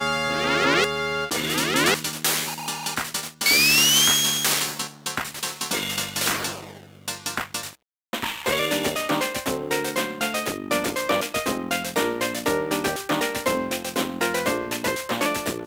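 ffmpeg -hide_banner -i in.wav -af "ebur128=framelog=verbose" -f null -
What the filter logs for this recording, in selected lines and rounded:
Integrated loudness:
  I:         -22.6 LUFS
  Threshold: -32.8 LUFS
Loudness range:
  LRA:         7.7 LU
  Threshold: -42.7 LUFS
  LRA low:   -26.7 LUFS
  LRA high:  -19.1 LUFS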